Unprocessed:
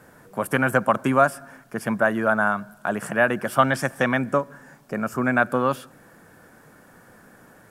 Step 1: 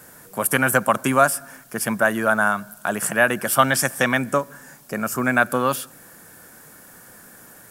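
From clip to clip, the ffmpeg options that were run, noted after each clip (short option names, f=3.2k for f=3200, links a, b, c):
-af "crystalizer=i=4:c=0"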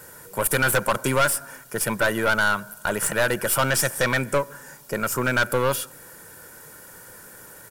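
-af "aecho=1:1:2.1:0.47,aeval=exprs='(tanh(7.08*val(0)+0.4)-tanh(0.4))/7.08':c=same,volume=2dB"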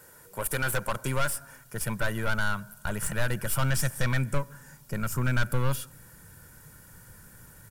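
-af "asubboost=boost=8:cutoff=150,volume=-8.5dB"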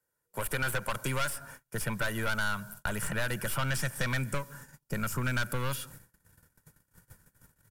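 -filter_complex "[0:a]agate=range=-32dB:threshold=-47dB:ratio=16:detection=peak,acrossover=split=150|1500|3900[a][b][c][d];[a]acompressor=threshold=-37dB:ratio=4[e];[b]acompressor=threshold=-37dB:ratio=4[f];[c]acompressor=threshold=-36dB:ratio=4[g];[d]acompressor=threshold=-41dB:ratio=4[h];[e][f][g][h]amix=inputs=4:normalize=0,volume=2.5dB"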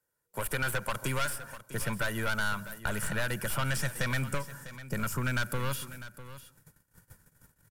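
-af "aecho=1:1:650:0.188"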